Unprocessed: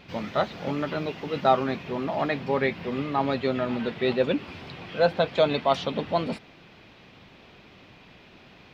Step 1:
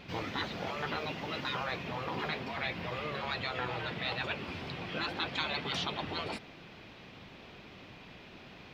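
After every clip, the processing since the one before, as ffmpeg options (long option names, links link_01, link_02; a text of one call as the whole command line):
ffmpeg -i in.wav -af "afftfilt=real='re*lt(hypot(re,im),0.126)':imag='im*lt(hypot(re,im),0.126)':win_size=1024:overlap=0.75" out.wav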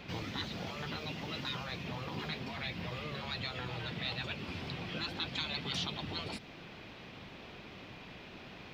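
ffmpeg -i in.wav -filter_complex "[0:a]acrossover=split=260|3000[link_01][link_02][link_03];[link_02]acompressor=threshold=-47dB:ratio=3[link_04];[link_01][link_04][link_03]amix=inputs=3:normalize=0,volume=1.5dB" out.wav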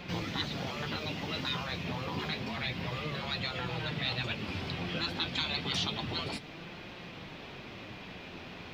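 ffmpeg -i in.wav -af "flanger=delay=5.6:depth=6.3:regen=66:speed=0.29:shape=sinusoidal,volume=8.5dB" out.wav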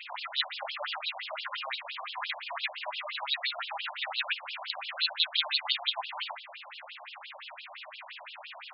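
ffmpeg -i in.wav -af "afftfilt=real='re*between(b*sr/1024,750*pow(3900/750,0.5+0.5*sin(2*PI*5.8*pts/sr))/1.41,750*pow(3900/750,0.5+0.5*sin(2*PI*5.8*pts/sr))*1.41)':imag='im*between(b*sr/1024,750*pow(3900/750,0.5+0.5*sin(2*PI*5.8*pts/sr))/1.41,750*pow(3900/750,0.5+0.5*sin(2*PI*5.8*pts/sr))*1.41)':win_size=1024:overlap=0.75,volume=8dB" out.wav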